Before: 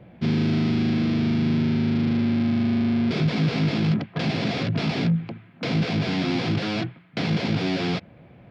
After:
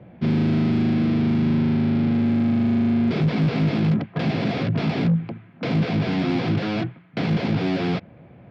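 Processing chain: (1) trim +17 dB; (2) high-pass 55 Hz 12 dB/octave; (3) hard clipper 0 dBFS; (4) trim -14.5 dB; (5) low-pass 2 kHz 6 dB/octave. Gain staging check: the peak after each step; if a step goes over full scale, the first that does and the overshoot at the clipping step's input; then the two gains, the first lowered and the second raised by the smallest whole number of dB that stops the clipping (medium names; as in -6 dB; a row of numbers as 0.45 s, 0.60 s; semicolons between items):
+5.0 dBFS, +5.0 dBFS, 0.0 dBFS, -14.5 dBFS, -14.5 dBFS; step 1, 5.0 dB; step 1 +12 dB, step 4 -9.5 dB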